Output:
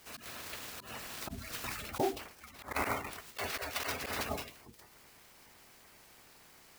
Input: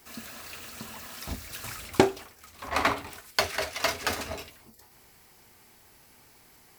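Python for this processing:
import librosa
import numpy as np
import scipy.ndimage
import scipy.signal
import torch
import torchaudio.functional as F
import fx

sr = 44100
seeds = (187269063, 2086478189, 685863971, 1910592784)

y = fx.spec_quant(x, sr, step_db=30)
y = fx.auto_swell(y, sr, attack_ms=108.0)
y = fx.clock_jitter(y, sr, seeds[0], jitter_ms=0.03)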